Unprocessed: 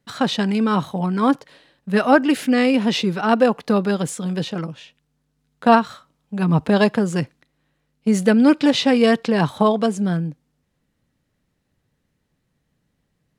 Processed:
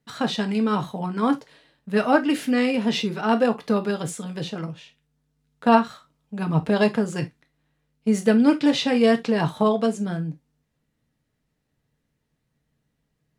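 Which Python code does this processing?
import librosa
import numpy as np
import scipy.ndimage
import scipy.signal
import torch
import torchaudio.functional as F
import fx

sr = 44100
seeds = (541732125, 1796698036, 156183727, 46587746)

y = fx.rev_gated(x, sr, seeds[0], gate_ms=90, shape='falling', drr_db=5.5)
y = y * 10.0 ** (-5.0 / 20.0)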